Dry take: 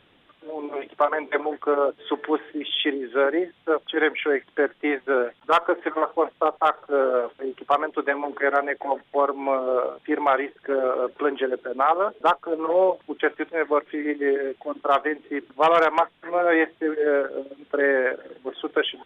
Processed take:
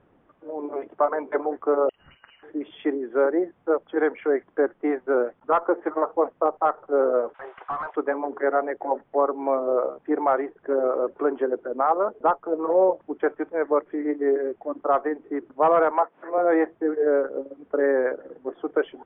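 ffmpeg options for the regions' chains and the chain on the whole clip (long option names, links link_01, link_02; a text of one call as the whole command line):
ffmpeg -i in.wav -filter_complex "[0:a]asettb=1/sr,asplit=3[link_01][link_02][link_03];[link_01]atrim=end=1.894[link_04];[link_02]atrim=start=1.89:end=2.43,asetpts=PTS-STARTPTS,afade=type=in:duration=0.004:curve=qsin,afade=type=out:start_time=0.536:duration=0.004:curve=qsin,acompressor=threshold=-36dB:ratio=8:attack=3.2:release=140:knee=1:detection=peak,lowpass=frequency=2800:width_type=q:width=0.5098,lowpass=frequency=2800:width_type=q:width=0.6013,lowpass=frequency=2800:width_type=q:width=0.9,lowpass=frequency=2800:width_type=q:width=2.563,afreqshift=-3300,asplit=2[link_05][link_06];[link_06]adelay=50,volume=-8dB[link_07];[link_05][link_07]amix=inputs=2:normalize=0,atrim=end_sample=23814[link_08];[link_03]atrim=start=2.426[link_09];[link_04][link_08]acrossfade=duration=0.004:curve1=hsin:curve2=qsin[link_10];[link_10][link_09]acrossfade=duration=0.004:curve1=qsin:curve2=hsin,asettb=1/sr,asplit=3[link_11][link_12][link_13];[link_11]atrim=end=7.344[link_14];[link_12]atrim=start=7.34:end=7.96,asetpts=PTS-STARTPTS,afade=type=in:duration=0.004:curve=qsin,afade=type=out:start_time=0.616:duration=0.004:curve=qsin,highpass=frequency=820:width=0.5412,highpass=frequency=820:width=1.3066,acompressor=threshold=-29dB:ratio=3:attack=3.2:release=140:knee=1:detection=peak,asplit=2[link_15][link_16];[link_16]highpass=frequency=720:poles=1,volume=24dB,asoftclip=type=tanh:threshold=-19dB[link_17];[link_15][link_17]amix=inputs=2:normalize=0,lowpass=frequency=2800:poles=1,volume=-6dB[link_18];[link_13]atrim=start=7.956[link_19];[link_14][link_18]acrossfade=duration=0.004:curve1=hsin:curve2=qsin[link_20];[link_20][link_19]acrossfade=duration=0.004:curve1=qsin:curve2=hsin,asettb=1/sr,asplit=3[link_21][link_22][link_23];[link_21]atrim=end=15.914[link_24];[link_22]atrim=start=15.91:end=16.38,asetpts=PTS-STARTPTS,afade=type=in:duration=0.004:curve=qsin,afade=type=out:start_time=0.466:duration=0.004:curve=qsin,acompressor=mode=upward:threshold=-29dB:ratio=2.5:attack=3.2:release=140:knee=2.83:detection=peak,highpass=340,lowpass=3300[link_25];[link_23]atrim=start=16.376[link_26];[link_24][link_25]acrossfade=duration=0.004:curve1=hsin:curve2=qsin[link_27];[link_27][link_26]acrossfade=duration=0.004:curve1=qsin:curve2=hsin,lowpass=1200,aemphasis=mode=reproduction:type=75fm" out.wav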